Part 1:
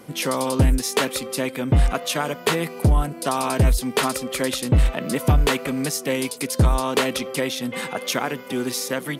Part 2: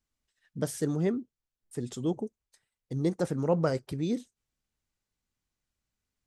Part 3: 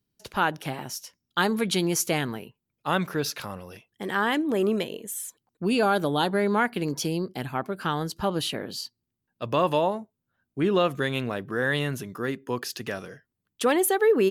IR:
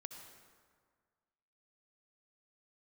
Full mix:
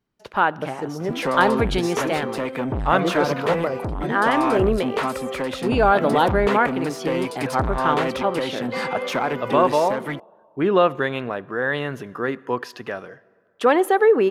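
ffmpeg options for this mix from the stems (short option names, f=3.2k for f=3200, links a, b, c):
-filter_complex "[0:a]acompressor=threshold=-22dB:ratio=3,equalizer=f=72:t=o:w=1.9:g=9.5,asoftclip=type=tanh:threshold=-22.5dB,adelay=1000,volume=-1dB[a];[1:a]volume=-3dB[b];[2:a]volume=-3.5dB,asplit=2[c][d];[d]volume=-12dB[e];[3:a]atrim=start_sample=2205[f];[e][f]afir=irnorm=-1:irlink=0[g];[a][b][c][g]amix=inputs=4:normalize=0,highshelf=f=5.3k:g=-11,tremolo=f=0.65:d=0.32,equalizer=f=920:w=0.34:g=11"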